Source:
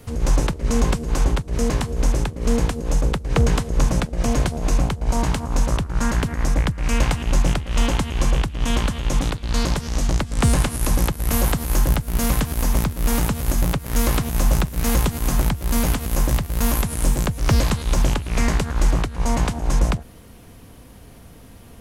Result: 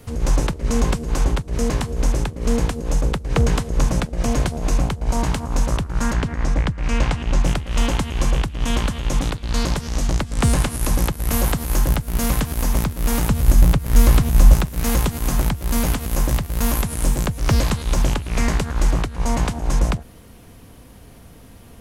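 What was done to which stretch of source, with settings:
6.13–7.44 air absorption 64 m
13.29–14.54 low shelf 150 Hz +9 dB

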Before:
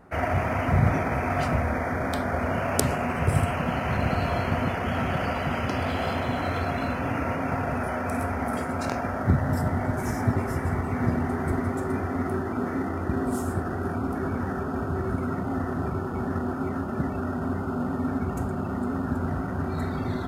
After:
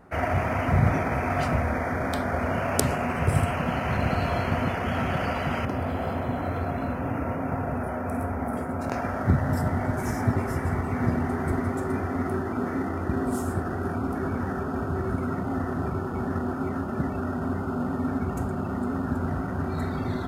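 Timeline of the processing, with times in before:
5.65–8.92 bell 4400 Hz -12.5 dB 2.6 oct

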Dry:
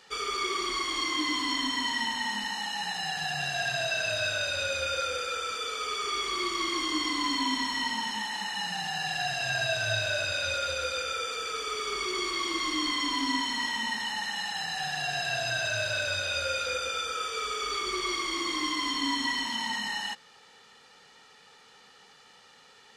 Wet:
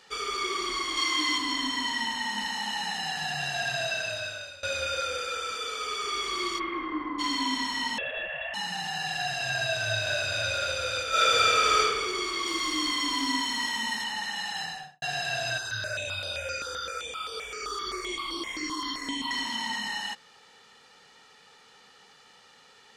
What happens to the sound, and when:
0.97–1.38 tilt shelf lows -4 dB, about 640 Hz
2.05–2.67 echo throw 0.31 s, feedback 60%, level -6 dB
3.86–4.63 fade out, to -20.5 dB
6.58–7.18 LPF 2600 Hz -> 1500 Hz 24 dB/oct
7.98–8.54 inverted band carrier 3600 Hz
9.57–10.54 echo throw 0.49 s, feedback 35%, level -6.5 dB
11.09–11.8 reverb throw, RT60 1.4 s, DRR -11 dB
12.46–14.04 high shelf 7200 Hz +7.5 dB
14.61–15.02 studio fade out
15.58–19.31 step phaser 7.7 Hz 620–6800 Hz

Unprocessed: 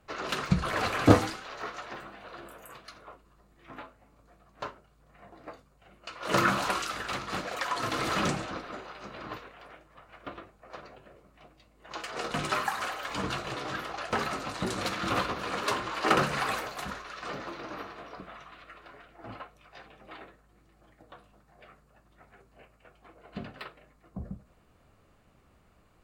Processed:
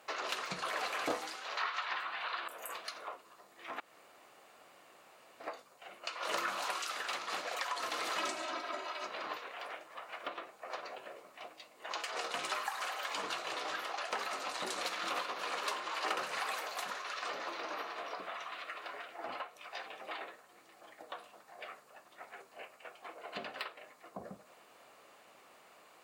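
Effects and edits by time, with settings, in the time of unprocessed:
1.57–2.48 band shelf 2000 Hz +12.5 dB 2.7 oct
3.8–5.4 room tone
8.18–9.07 comb 3.1 ms, depth 99%
whole clip: HPF 600 Hz 12 dB/oct; bell 1400 Hz -3.5 dB 0.67 oct; compressor 3:1, threshold -50 dBFS; gain +10 dB

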